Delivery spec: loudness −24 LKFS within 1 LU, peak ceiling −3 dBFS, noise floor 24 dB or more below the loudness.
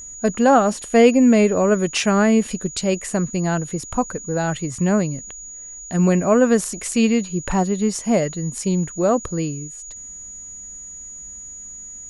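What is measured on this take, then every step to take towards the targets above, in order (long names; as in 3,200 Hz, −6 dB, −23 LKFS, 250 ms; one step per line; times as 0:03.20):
interfering tone 6,800 Hz; level of the tone −34 dBFS; integrated loudness −19.0 LKFS; sample peak −2.0 dBFS; target loudness −24.0 LKFS
→ notch filter 6,800 Hz, Q 30
level −5 dB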